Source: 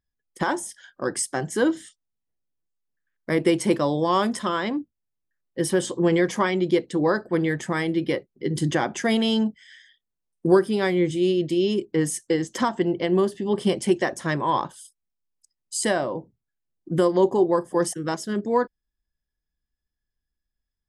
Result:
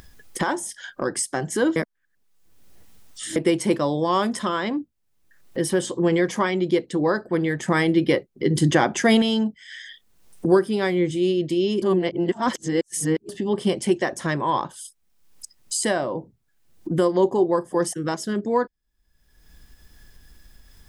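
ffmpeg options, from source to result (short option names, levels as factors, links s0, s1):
-filter_complex "[0:a]asplit=7[s0][s1][s2][s3][s4][s5][s6];[s0]atrim=end=1.762[s7];[s1]atrim=start=1.758:end=3.362,asetpts=PTS-STARTPTS,areverse[s8];[s2]atrim=start=3.358:end=7.682[s9];[s3]atrim=start=7.678:end=9.222,asetpts=PTS-STARTPTS,volume=1.78[s10];[s4]atrim=start=9.218:end=11.822[s11];[s5]atrim=start=11.818:end=13.292,asetpts=PTS-STARTPTS,areverse[s12];[s6]atrim=start=13.288[s13];[s7][s8]acrossfade=d=0.004:c1=hsin:c2=hsin[s14];[s14][s9]acrossfade=d=0.004:c1=hsin:c2=hsin[s15];[s15][s10]acrossfade=d=0.004:c1=hsin:c2=hsin[s16];[s16][s11]acrossfade=d=0.004:c1=hsin:c2=hsin[s17];[s17][s12]acrossfade=d=0.004:c1=hsin:c2=hsin[s18];[s18][s13]acrossfade=d=0.004:c1=hsin:c2=hsin,acompressor=mode=upward:threshold=0.0891:ratio=2.5"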